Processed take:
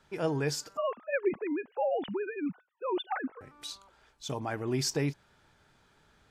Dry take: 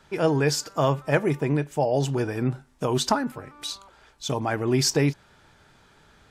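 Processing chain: 0.77–3.41 s: formants replaced by sine waves; trim -8.5 dB

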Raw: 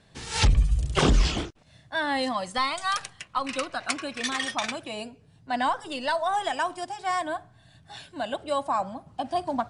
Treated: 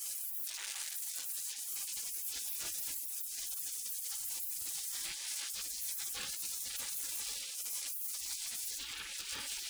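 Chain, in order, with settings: spectral levelling over time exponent 0.6; waveshaping leveller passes 5; 8.76–9.37 s: peaking EQ 660 Hz +14.5 dB -> +8.5 dB 0.51 oct; reverberation RT60 0.30 s, pre-delay 4 ms, DRR -8 dB; compression 16:1, threshold -6 dBFS, peak gain reduction 17 dB; saturation -12 dBFS, distortion -9 dB; high-pass 54 Hz 12 dB/octave; spectral gate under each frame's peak -30 dB weak; treble shelf 5.9 kHz +9 dB; peak limiter -19.5 dBFS, peak gain reduction 9.5 dB; trim -8.5 dB

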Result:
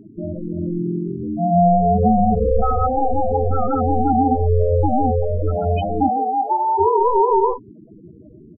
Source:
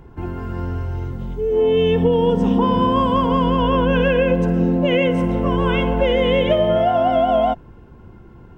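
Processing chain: ring modulator 260 Hz; 2.86–3.48 s: steep low-pass 1 kHz 72 dB/octave; early reflections 36 ms -13 dB, 46 ms -16.5 dB; loudest bins only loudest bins 8; 6.08–6.77 s: high-pass 290 Hz -> 740 Hz 24 dB/octave; trim +4.5 dB

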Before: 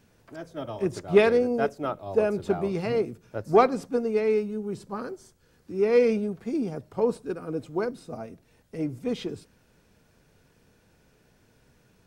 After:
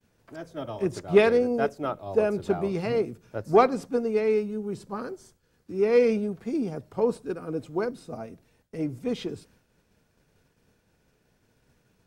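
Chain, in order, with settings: expander -56 dBFS

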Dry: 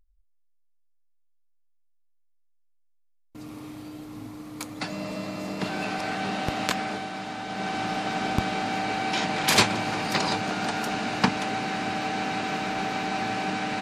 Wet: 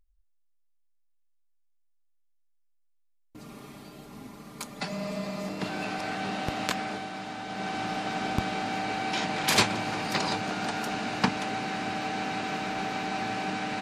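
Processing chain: 3.38–5.49 s: comb 5 ms, depth 72%; trim -3 dB

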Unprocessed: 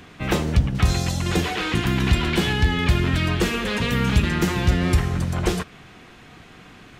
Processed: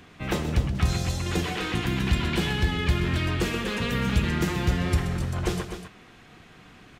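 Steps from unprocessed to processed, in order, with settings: loudspeakers at several distances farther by 44 m -11 dB, 86 m -10 dB; trim -5.5 dB

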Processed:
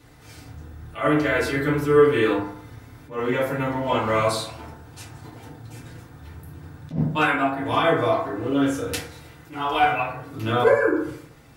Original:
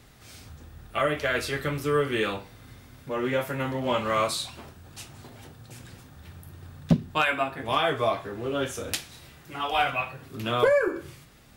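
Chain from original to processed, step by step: FDN reverb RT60 0.66 s, low-frequency decay 0.9×, high-frequency decay 0.3×, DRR -7.5 dB; attacks held to a fixed rise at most 180 dB/s; trim -4 dB

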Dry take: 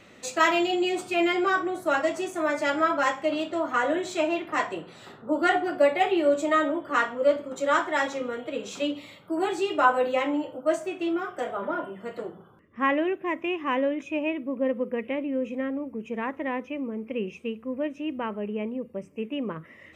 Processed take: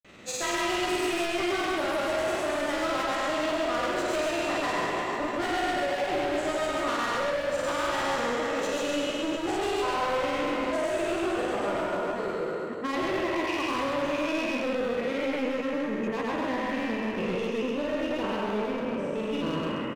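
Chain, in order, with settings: spectral sustain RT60 2.90 s; dynamic bell 1.5 kHz, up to -6 dB, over -34 dBFS, Q 1.5; compression, threshold -19 dBFS, peak gain reduction 6 dB; hard clipper -26.5 dBFS, distortion -8 dB; granulator, pitch spread up and down by 0 st; delay 131 ms -3.5 dB

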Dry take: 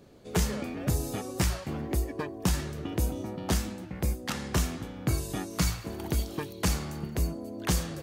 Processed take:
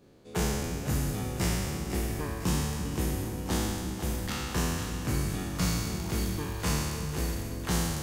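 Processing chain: spectral sustain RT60 1.98 s; peaking EQ 640 Hz -3.5 dB 0.23 oct; two-band feedback delay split 460 Hz, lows 339 ms, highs 503 ms, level -9 dB; trim -6 dB

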